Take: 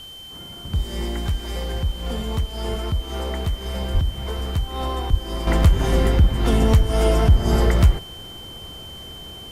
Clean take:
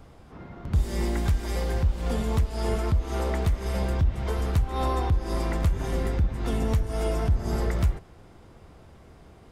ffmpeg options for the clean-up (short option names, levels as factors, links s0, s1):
-filter_complex "[0:a]bandreject=f=3100:w=30,asplit=3[s0][s1][s2];[s0]afade=t=out:st=3.93:d=0.02[s3];[s1]highpass=f=140:w=0.5412,highpass=f=140:w=1.3066,afade=t=in:st=3.93:d=0.02,afade=t=out:st=4.05:d=0.02[s4];[s2]afade=t=in:st=4.05:d=0.02[s5];[s3][s4][s5]amix=inputs=3:normalize=0,asplit=3[s6][s7][s8];[s6]afade=t=out:st=5.1:d=0.02[s9];[s7]highpass=f=140:w=0.5412,highpass=f=140:w=1.3066,afade=t=in:st=5.1:d=0.02,afade=t=out:st=5.22:d=0.02[s10];[s8]afade=t=in:st=5.22:d=0.02[s11];[s9][s10][s11]amix=inputs=3:normalize=0,agate=range=0.0891:threshold=0.0316,asetnsamples=n=441:p=0,asendcmd='5.47 volume volume -9dB',volume=1"